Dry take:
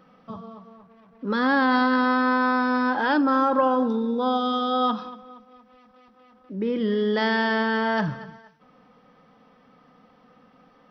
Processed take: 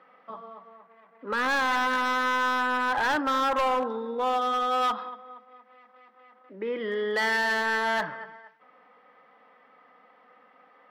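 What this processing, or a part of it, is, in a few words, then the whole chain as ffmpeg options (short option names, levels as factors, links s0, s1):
megaphone: -af "highpass=540,lowpass=2500,equalizer=f=2000:t=o:w=0.25:g=8,asoftclip=type=hard:threshold=0.0708,volume=1.19"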